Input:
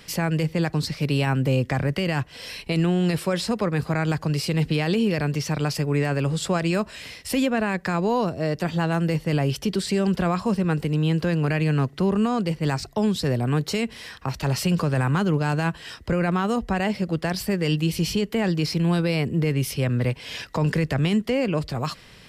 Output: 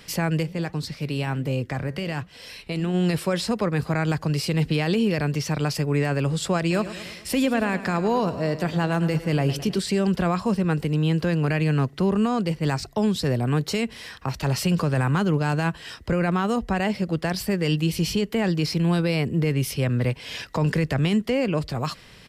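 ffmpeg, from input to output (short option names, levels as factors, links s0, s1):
-filter_complex "[0:a]asplit=3[s0][s1][s2];[s0]afade=t=out:st=0.42:d=0.02[s3];[s1]flanger=delay=2.4:depth=8:regen=-87:speed=1.3:shape=sinusoidal,afade=t=in:st=0.42:d=0.02,afade=t=out:st=2.93:d=0.02[s4];[s2]afade=t=in:st=2.93:d=0.02[s5];[s3][s4][s5]amix=inputs=3:normalize=0,asplit=3[s6][s7][s8];[s6]afade=t=out:st=6.7:d=0.02[s9];[s7]aecho=1:1:106|212|318|424|530|636:0.211|0.123|0.0711|0.0412|0.0239|0.0139,afade=t=in:st=6.7:d=0.02,afade=t=out:st=9.78:d=0.02[s10];[s8]afade=t=in:st=9.78:d=0.02[s11];[s9][s10][s11]amix=inputs=3:normalize=0"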